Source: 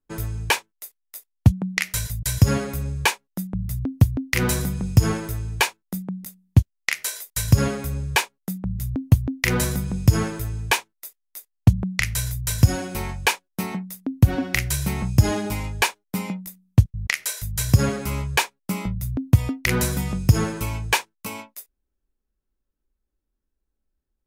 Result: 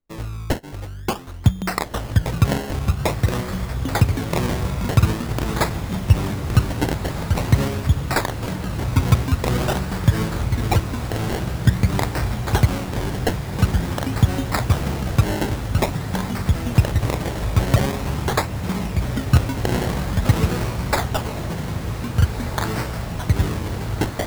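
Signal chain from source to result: echoes that change speed 0.521 s, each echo -2 st, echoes 2; decimation with a swept rate 25×, swing 100% 0.47 Hz; diffused feedback echo 1.663 s, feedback 70%, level -9.5 dB; gain -1 dB

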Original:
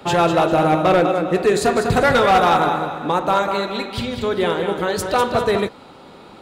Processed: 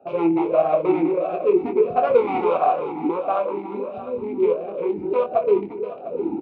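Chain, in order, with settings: Wiener smoothing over 41 samples; recorder AGC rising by 39 dB/s; air absorption 220 m; doubler 24 ms -7 dB; split-band echo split 490 Hz, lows 0.236 s, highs 0.351 s, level -9 dB; vowel sweep a-u 1.5 Hz; gain +6.5 dB

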